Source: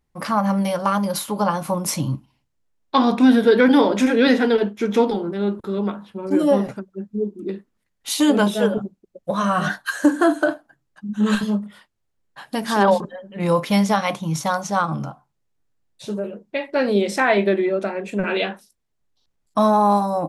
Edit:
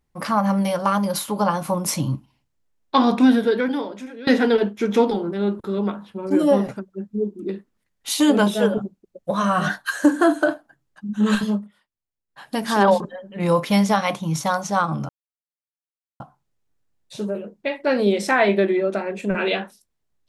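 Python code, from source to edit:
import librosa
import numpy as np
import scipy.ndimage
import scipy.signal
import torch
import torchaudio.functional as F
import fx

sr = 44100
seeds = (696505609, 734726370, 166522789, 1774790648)

y = fx.edit(x, sr, fx.fade_out_to(start_s=3.2, length_s=1.07, curve='qua', floor_db=-21.0),
    fx.fade_down_up(start_s=11.51, length_s=0.97, db=-15.5, fade_s=0.21),
    fx.insert_silence(at_s=15.09, length_s=1.11), tone=tone)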